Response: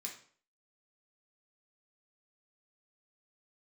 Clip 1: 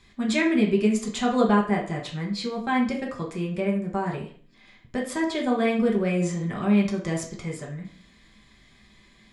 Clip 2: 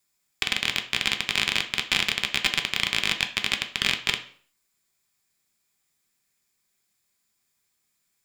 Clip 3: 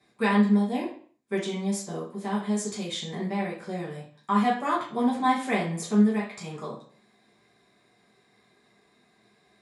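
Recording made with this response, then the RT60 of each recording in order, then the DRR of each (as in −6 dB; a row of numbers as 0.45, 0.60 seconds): 1; 0.50, 0.50, 0.50 seconds; −2.0, 5.0, −9.5 decibels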